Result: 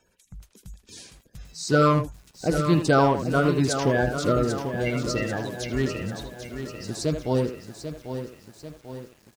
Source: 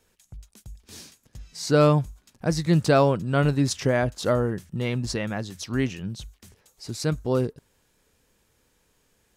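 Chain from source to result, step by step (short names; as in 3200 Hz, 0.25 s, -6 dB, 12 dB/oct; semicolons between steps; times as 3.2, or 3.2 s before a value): bin magnitudes rounded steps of 30 dB; speakerphone echo 80 ms, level -7 dB; lo-fi delay 0.792 s, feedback 55%, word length 8-bit, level -9 dB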